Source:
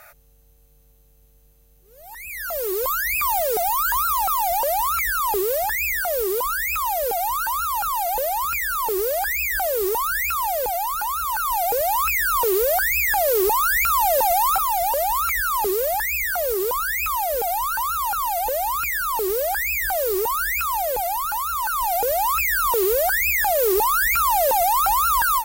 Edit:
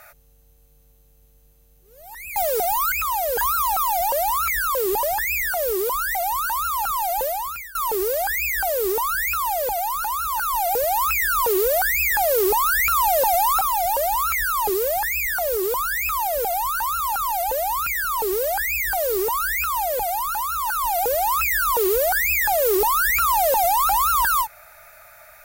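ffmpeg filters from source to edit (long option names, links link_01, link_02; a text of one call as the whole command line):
ffmpeg -i in.wav -filter_complex "[0:a]asplit=8[link_01][link_02][link_03][link_04][link_05][link_06][link_07][link_08];[link_01]atrim=end=2.362[link_09];[link_02]atrim=start=3.328:end=3.892[link_10];[link_03]atrim=start=6.658:end=7.122[link_11];[link_04]atrim=start=3.888:end=5.262[link_12];[link_05]atrim=start=5.258:end=5.542,asetpts=PTS-STARTPTS,areverse[link_13];[link_06]atrim=start=5.538:end=6.662[link_14];[link_07]atrim=start=7.118:end=8.72,asetpts=PTS-STARTPTS,afade=type=out:start_time=1.072:duration=0.53:silence=0.0841395[link_15];[link_08]atrim=start=8.72,asetpts=PTS-STARTPTS,afade=type=in:duration=0.004:curve=hsin:silence=0.0841395[link_16];[link_09][link_10]acrossfade=duration=0.004:curve1=hsin:curve2=hsin[link_17];[link_17][link_11]acrossfade=duration=0.004:curve1=hsin:curve2=hsin[link_18];[link_18][link_12]acrossfade=duration=0.004:curve1=hsin:curve2=hsin[link_19];[link_19][link_13]acrossfade=duration=0.004:curve1=hsin:curve2=hsin[link_20];[link_20][link_14]acrossfade=duration=0.004:curve1=hsin:curve2=hsin[link_21];[link_15][link_16]concat=n=2:v=0:a=1[link_22];[link_21][link_22]acrossfade=duration=0.004:curve1=hsin:curve2=hsin" out.wav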